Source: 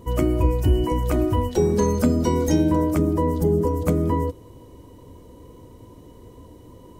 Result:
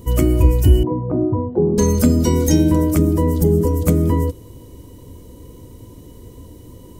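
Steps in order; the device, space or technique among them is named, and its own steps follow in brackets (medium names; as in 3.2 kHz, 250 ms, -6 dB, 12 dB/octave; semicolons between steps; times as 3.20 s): smiley-face EQ (bass shelf 160 Hz +3.5 dB; peaking EQ 900 Hz -6 dB 1.6 oct; treble shelf 6 kHz +8.5 dB); 0.83–1.78 s: Chebyshev band-pass 110–960 Hz, order 3; trim +4.5 dB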